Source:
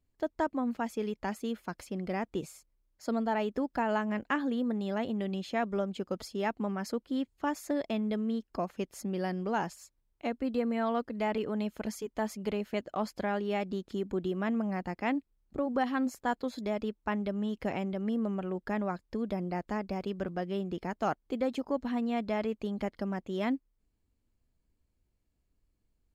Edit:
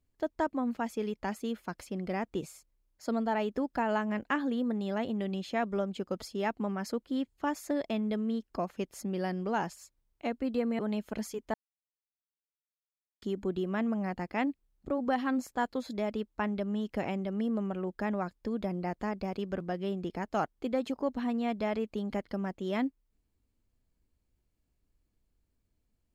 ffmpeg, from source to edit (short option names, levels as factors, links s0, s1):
-filter_complex "[0:a]asplit=4[s0][s1][s2][s3];[s0]atrim=end=10.792[s4];[s1]atrim=start=11.468:end=12.22,asetpts=PTS-STARTPTS,afade=t=out:st=0.748:d=0.004:c=hsin[s5];[s2]atrim=start=12.22:end=13.9,asetpts=PTS-STARTPTS,volume=0[s6];[s3]atrim=start=13.9,asetpts=PTS-STARTPTS,afade=t=in:d=0.004:c=hsin[s7];[s5][s6][s7]concat=n=3:v=0:a=1[s8];[s4][s8]acrossfade=d=0.004:c1=hsin:c2=hsin"